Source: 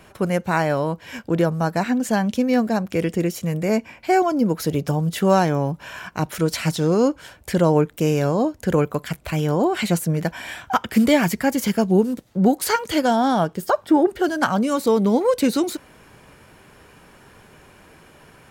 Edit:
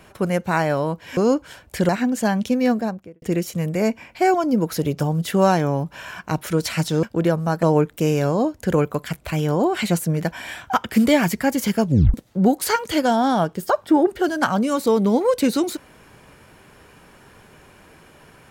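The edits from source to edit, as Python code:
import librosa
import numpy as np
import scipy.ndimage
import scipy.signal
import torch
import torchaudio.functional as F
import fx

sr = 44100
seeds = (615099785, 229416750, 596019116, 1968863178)

y = fx.studio_fade_out(x, sr, start_s=2.55, length_s=0.55)
y = fx.edit(y, sr, fx.swap(start_s=1.17, length_s=0.6, other_s=6.91, other_length_s=0.72),
    fx.tape_stop(start_s=11.85, length_s=0.29), tone=tone)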